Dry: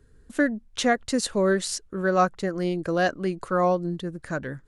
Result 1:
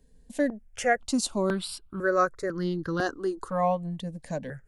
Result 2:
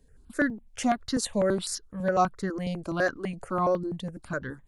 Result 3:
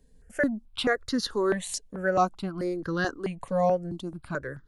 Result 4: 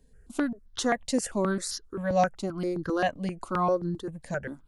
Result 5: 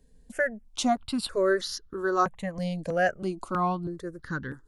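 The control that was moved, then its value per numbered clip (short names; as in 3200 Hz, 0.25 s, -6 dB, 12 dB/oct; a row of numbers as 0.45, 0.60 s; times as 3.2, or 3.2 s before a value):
step phaser, rate: 2, 12, 4.6, 7.6, 3.1 Hz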